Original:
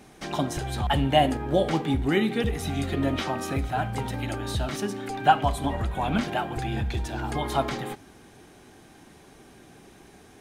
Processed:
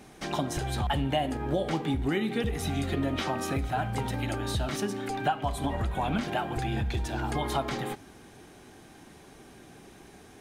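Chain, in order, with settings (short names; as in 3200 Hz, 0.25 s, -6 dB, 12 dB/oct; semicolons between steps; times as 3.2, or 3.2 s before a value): compressor 4:1, threshold -25 dBFS, peak gain reduction 11 dB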